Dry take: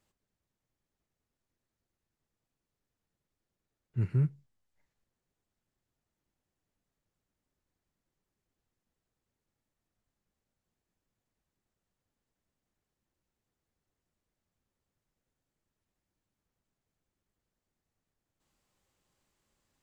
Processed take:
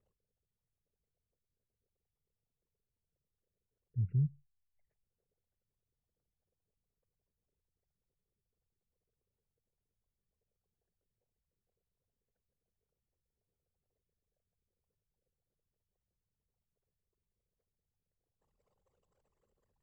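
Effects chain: resonances exaggerated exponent 3; resonant low shelf 370 Hz -6.5 dB, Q 3; trim +4 dB

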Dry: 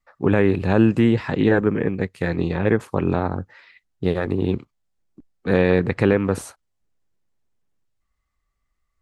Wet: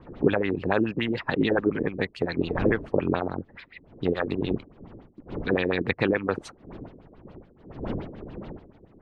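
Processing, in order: wind noise 310 Hz -36 dBFS; treble shelf 2.8 kHz +9 dB; in parallel at -0.5 dB: compression, threshold -31 dBFS, peak gain reduction 19 dB; on the sum: harmonic-percussive split harmonic -12 dB; LFO low-pass sine 7 Hz 320–4100 Hz; trim -4.5 dB

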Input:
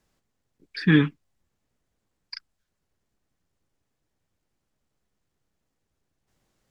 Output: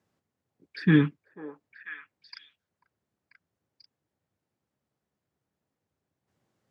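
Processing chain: high-pass 83 Hz 24 dB/octave; treble shelf 2.4 kHz -8.5 dB; repeats whose band climbs or falls 491 ms, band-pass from 680 Hz, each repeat 1.4 oct, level -5.5 dB; trim -1.5 dB

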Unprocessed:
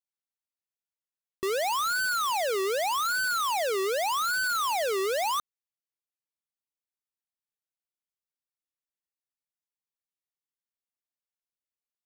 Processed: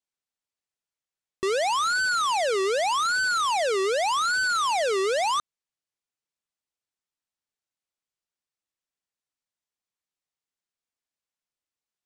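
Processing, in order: low-pass 9 kHz 24 dB/octave; trim +3.5 dB

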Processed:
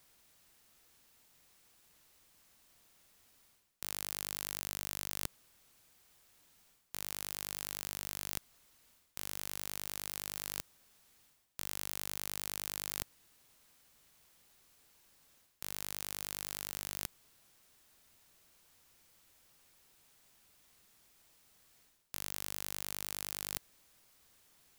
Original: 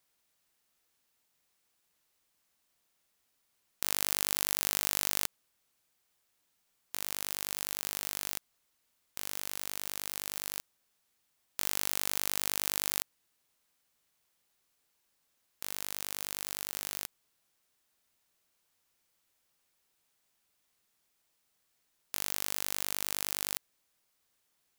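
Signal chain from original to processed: bass shelf 180 Hz +7 dB; reverse; compression 5:1, threshold -44 dBFS, peak gain reduction 18.5 dB; reverse; trim +9.5 dB

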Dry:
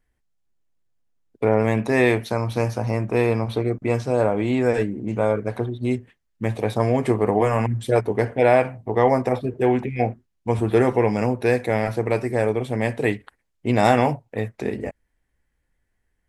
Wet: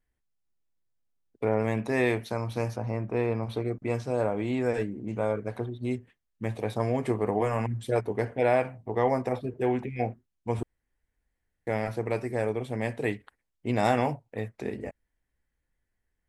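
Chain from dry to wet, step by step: 2.76–3.43 s: low-pass 2.2 kHz 6 dB/octave; 10.63–11.67 s: room tone; trim -7.5 dB

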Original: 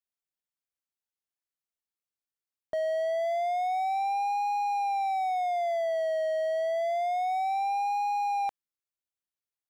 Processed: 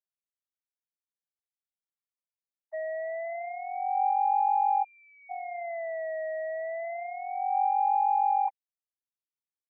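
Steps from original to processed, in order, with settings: formants replaced by sine waves; spectral selection erased 4.84–5.30 s, 210–1200 Hz

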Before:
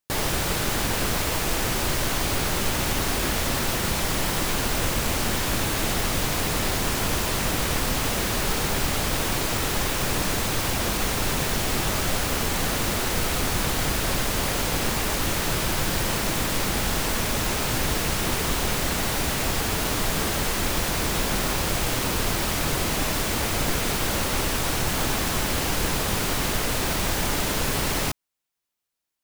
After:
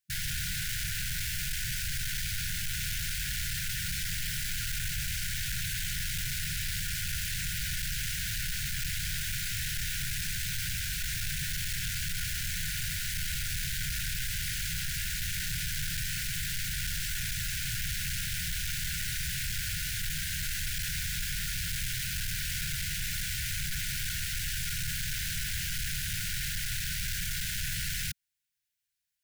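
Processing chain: saturation -28 dBFS, distortion -8 dB; brick-wall FIR band-stop 180–1400 Hz; trim -1 dB

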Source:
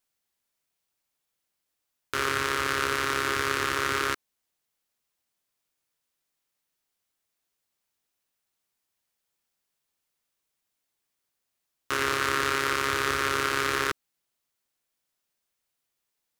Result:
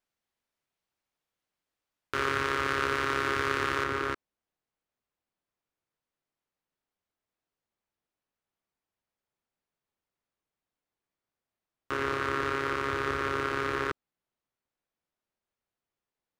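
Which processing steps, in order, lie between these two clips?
low-pass 2.3 kHz 6 dB/octave, from 3.84 s 1.1 kHz

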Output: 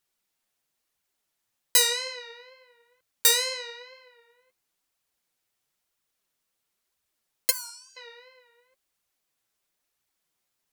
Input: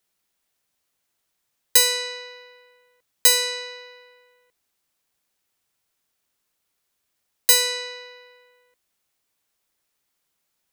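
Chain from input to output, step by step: 7.50–7.97 s: spectral gate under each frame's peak -15 dB weak; wow and flutter 87 cents; flange 1 Hz, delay 0.6 ms, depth 9.5 ms, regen +27%

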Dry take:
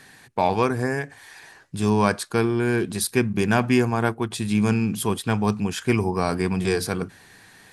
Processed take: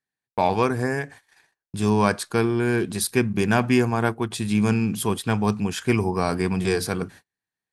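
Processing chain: gate -42 dBFS, range -41 dB

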